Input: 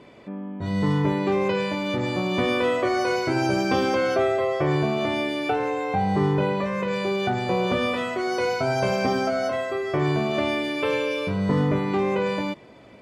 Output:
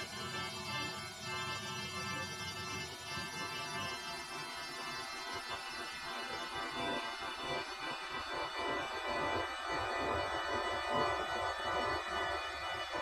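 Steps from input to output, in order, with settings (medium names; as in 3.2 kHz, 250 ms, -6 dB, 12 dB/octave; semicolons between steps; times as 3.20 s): Paulstretch 21×, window 0.50 s, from 11.00 s; spectral gate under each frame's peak -20 dB weak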